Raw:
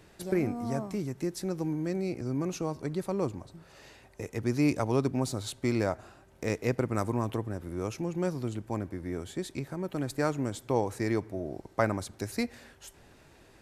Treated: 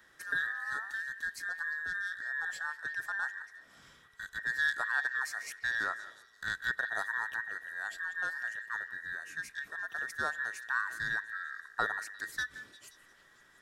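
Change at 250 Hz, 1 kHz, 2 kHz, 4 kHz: -29.0, -3.0, +12.0, -1.0 dB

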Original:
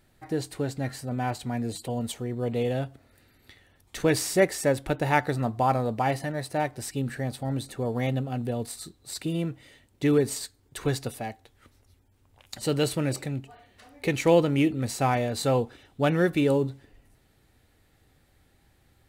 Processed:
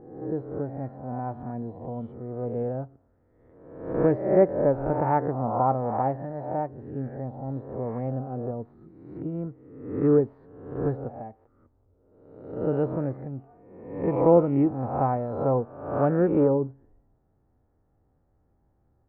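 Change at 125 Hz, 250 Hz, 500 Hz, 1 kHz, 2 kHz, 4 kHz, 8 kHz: -1.0 dB, +0.5 dB, +2.0 dB, +1.0 dB, -12.5 dB, under -35 dB, under -40 dB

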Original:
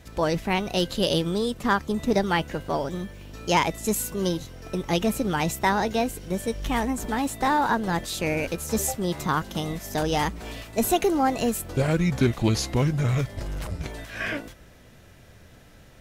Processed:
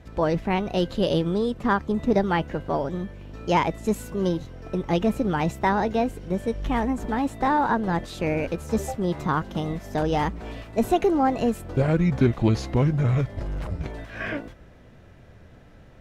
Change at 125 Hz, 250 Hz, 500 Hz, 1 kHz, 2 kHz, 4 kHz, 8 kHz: +2.0, +2.0, +1.5, +0.5, -2.5, -6.5, -12.5 dB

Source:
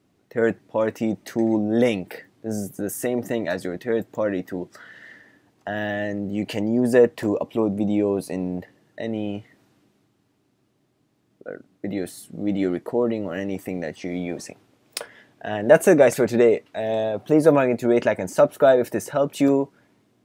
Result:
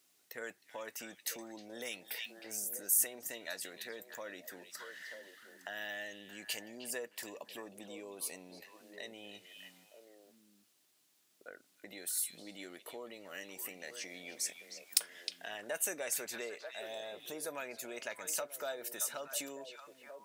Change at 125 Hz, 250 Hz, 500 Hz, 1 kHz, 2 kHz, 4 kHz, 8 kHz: -34.0, -30.0, -25.5, -20.5, -13.0, -4.0, +1.0 dB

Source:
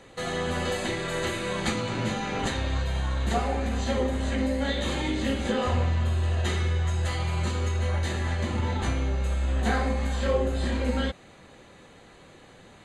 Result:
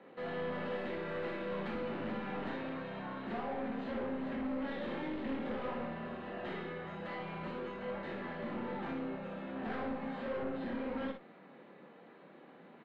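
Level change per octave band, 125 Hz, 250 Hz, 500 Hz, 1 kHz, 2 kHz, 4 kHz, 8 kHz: -22.0 dB, -8.5 dB, -9.0 dB, -9.5 dB, -11.5 dB, -18.5 dB, under -35 dB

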